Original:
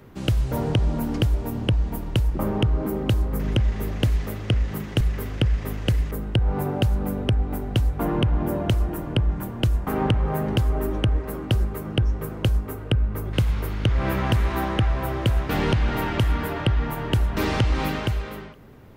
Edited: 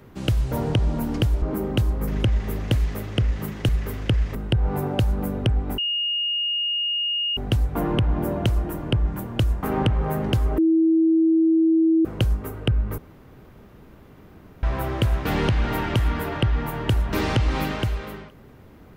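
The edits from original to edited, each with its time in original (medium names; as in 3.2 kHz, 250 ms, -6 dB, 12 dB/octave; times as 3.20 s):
1.42–2.74 s: delete
5.67–6.18 s: delete
7.61 s: add tone 2.85 kHz -21.5 dBFS 1.59 s
10.82–12.29 s: bleep 324 Hz -14.5 dBFS
13.22–14.87 s: room tone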